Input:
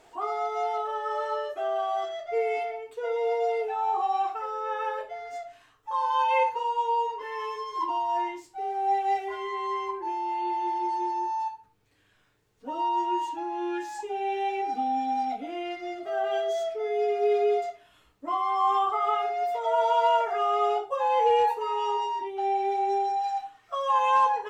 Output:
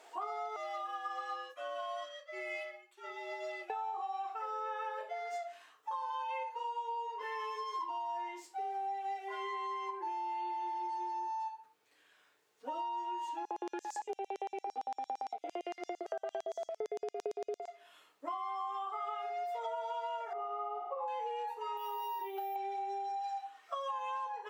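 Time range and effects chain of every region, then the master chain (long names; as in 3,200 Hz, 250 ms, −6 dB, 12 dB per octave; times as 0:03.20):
0:00.56–0:03.70: high-pass filter 1,100 Hz + frequency shifter −80 Hz + expander for the loud parts, over −53 dBFS
0:13.45–0:17.68: spectral tilt −2 dB per octave + auto-filter high-pass square 8.8 Hz 430–6,200 Hz
0:20.33–0:21.08: mu-law and A-law mismatch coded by A + Savitzky-Golay smoothing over 65 samples + flutter between parallel walls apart 8.9 metres, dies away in 0.76 s
0:21.77–0:22.56: bad sample-rate conversion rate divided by 3×, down filtered, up hold + downward compressor 2.5 to 1, threshold −31 dBFS
whole clip: high-pass filter 470 Hz 12 dB per octave; downward compressor 12 to 1, threshold −36 dBFS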